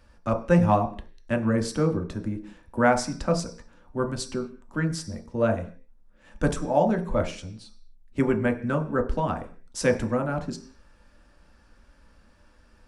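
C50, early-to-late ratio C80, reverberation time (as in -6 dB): 12.0 dB, 16.5 dB, 0.45 s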